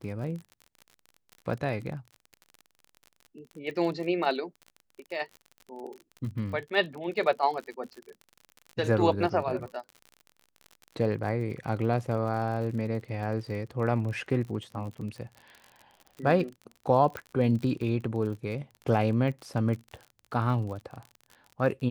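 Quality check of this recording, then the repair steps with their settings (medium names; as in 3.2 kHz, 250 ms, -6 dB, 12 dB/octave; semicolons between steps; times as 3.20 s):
crackle 44 per s -37 dBFS
17.17 s: pop -20 dBFS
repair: de-click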